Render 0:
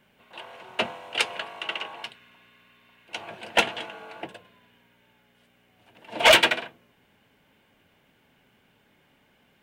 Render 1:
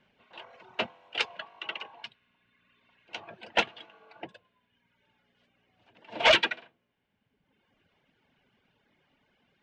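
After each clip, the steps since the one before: reverb removal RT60 1.3 s; low-pass 5.8 kHz 24 dB/octave; trim -4.5 dB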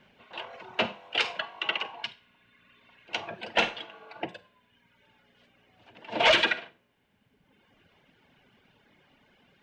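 Schroeder reverb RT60 0.32 s, combs from 31 ms, DRR 14.5 dB; peak limiter -20.5 dBFS, peak gain reduction 9 dB; trim +7.5 dB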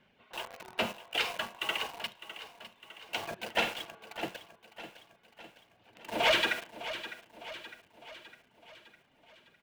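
in parallel at -8 dB: companded quantiser 2-bit; on the sum: feedback delay 606 ms, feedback 54%, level -13 dB; trim -6.5 dB

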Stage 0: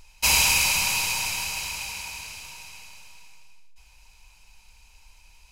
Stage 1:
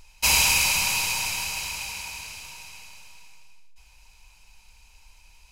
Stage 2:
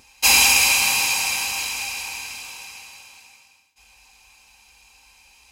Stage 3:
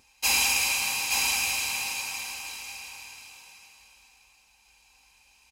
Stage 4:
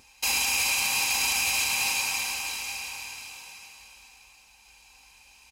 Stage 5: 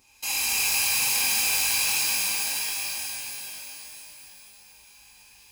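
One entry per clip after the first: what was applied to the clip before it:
no audible change
Bessel high-pass 160 Hz, order 2; reverberation, pre-delay 3 ms, DRR 0 dB; trim +2.5 dB
delay 874 ms -3.5 dB; trim -9 dB
peak limiter -21.5 dBFS, peak gain reduction 10 dB; trim +5.5 dB
treble shelf 9.8 kHz +8.5 dB; pitch-shifted reverb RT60 2.1 s, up +12 st, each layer -2 dB, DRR -5.5 dB; trim -8.5 dB

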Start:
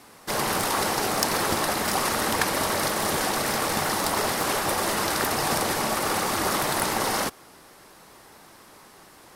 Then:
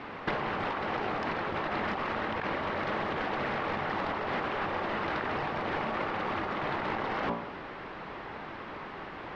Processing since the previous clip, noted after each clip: low-pass 2.9 kHz 24 dB/octave; de-hum 57.88 Hz, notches 20; compressor with a negative ratio -35 dBFS, ratio -1; trim +2.5 dB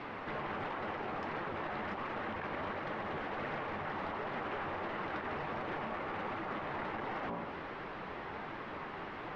dynamic bell 4.6 kHz, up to -5 dB, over -54 dBFS, Q 1.2; peak limiter -29 dBFS, peak gain reduction 11 dB; flange 1.4 Hz, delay 5.5 ms, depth 8.7 ms, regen -36%; trim +2 dB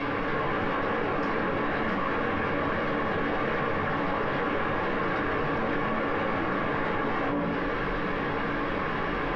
reverberation RT60 0.40 s, pre-delay 4 ms, DRR -5.5 dB; level flattener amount 70%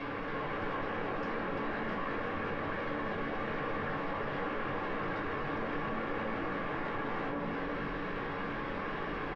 delay 342 ms -6 dB; trim -9 dB

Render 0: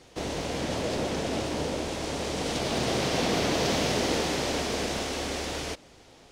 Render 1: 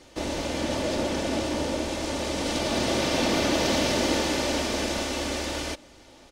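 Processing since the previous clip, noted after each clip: comb 3.4 ms, depth 47%; trim +1.5 dB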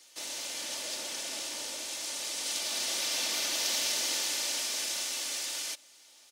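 differentiator; trim +3.5 dB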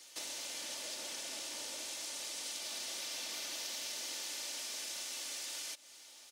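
compression 5:1, threshold -42 dBFS, peak gain reduction 13.5 dB; trim +1.5 dB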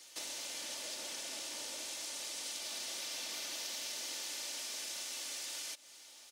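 crackle 18 per s -54 dBFS

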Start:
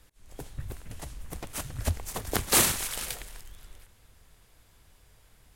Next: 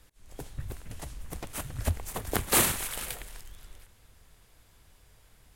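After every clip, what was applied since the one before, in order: dynamic bell 5.4 kHz, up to -6 dB, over -48 dBFS, Q 1.2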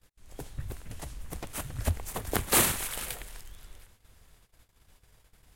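gate -57 dBFS, range -19 dB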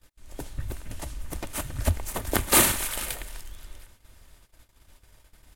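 comb 3.3 ms, depth 32%; trim +4 dB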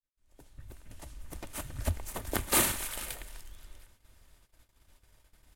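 fade-in on the opening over 1.64 s; trim -7 dB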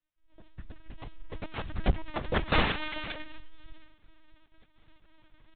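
LPC vocoder at 8 kHz pitch kept; trim +5.5 dB

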